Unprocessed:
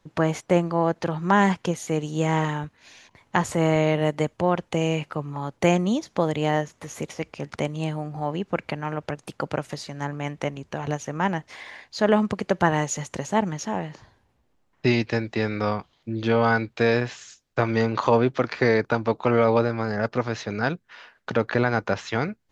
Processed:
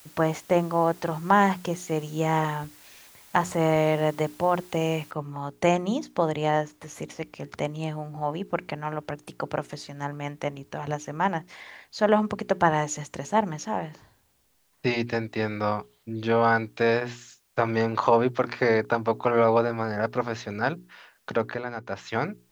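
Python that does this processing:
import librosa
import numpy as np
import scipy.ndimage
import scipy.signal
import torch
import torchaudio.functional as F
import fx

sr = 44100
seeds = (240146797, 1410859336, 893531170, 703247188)

y = fx.noise_floor_step(x, sr, seeds[0], at_s=5.11, before_db=-49, after_db=-66, tilt_db=0.0)
y = fx.edit(y, sr, fx.fade_down_up(start_s=21.34, length_s=0.81, db=-8.5, fade_s=0.29), tone=tone)
y = fx.hum_notches(y, sr, base_hz=60, count=7)
y = fx.dynamic_eq(y, sr, hz=860.0, q=0.88, threshold_db=-32.0, ratio=4.0, max_db=5)
y = y * 10.0 ** (-3.5 / 20.0)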